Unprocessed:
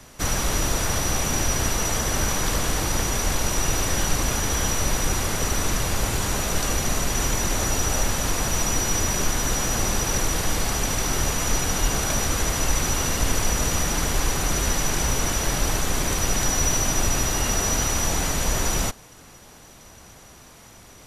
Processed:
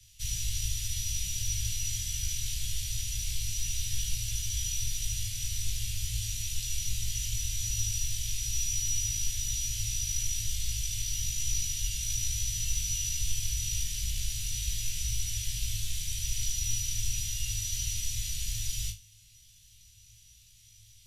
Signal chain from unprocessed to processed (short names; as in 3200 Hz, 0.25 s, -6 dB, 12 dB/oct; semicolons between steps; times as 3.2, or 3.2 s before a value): elliptic band-stop 110–3000 Hz, stop band 70 dB; high shelf 8600 Hz -4 dB; notches 50/100/150/200/250/300/350 Hz; companded quantiser 8-bit; on a send: flutter echo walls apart 3.2 m, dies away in 0.25 s; on the sum: gain -7.5 dB